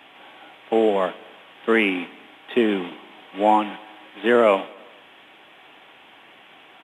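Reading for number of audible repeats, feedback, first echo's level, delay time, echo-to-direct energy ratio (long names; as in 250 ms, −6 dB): 3, 59%, −24.0 dB, 115 ms, −22.0 dB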